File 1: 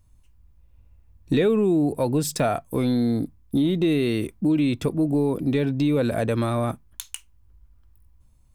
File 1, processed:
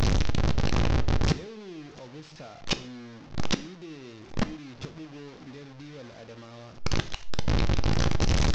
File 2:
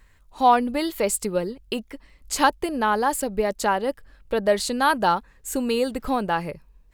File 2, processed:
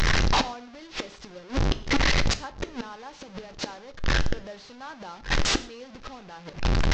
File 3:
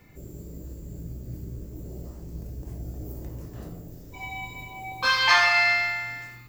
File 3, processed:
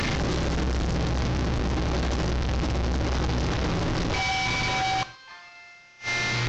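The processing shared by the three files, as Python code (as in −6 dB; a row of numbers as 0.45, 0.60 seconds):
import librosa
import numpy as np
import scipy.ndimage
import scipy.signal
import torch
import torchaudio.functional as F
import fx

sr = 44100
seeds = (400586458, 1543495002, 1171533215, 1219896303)

y = fx.delta_mod(x, sr, bps=32000, step_db=-20.0)
y = fx.gate_flip(y, sr, shuts_db=-18.0, range_db=-27)
y = fx.rev_gated(y, sr, seeds[0], gate_ms=170, shape='falling', drr_db=11.0)
y = y * 10.0 ** (-26 / 20.0) / np.sqrt(np.mean(np.square(y)))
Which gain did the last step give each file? +4.5, +6.0, +0.5 decibels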